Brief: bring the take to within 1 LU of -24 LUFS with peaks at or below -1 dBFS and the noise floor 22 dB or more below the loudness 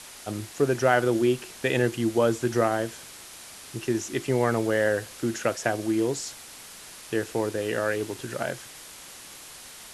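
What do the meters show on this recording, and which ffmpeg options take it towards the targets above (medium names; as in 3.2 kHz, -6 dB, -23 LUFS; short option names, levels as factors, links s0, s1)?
noise floor -45 dBFS; noise floor target -49 dBFS; loudness -26.5 LUFS; peak level -7.0 dBFS; loudness target -24.0 LUFS
-> -af "afftdn=nr=6:nf=-45"
-af "volume=1.33"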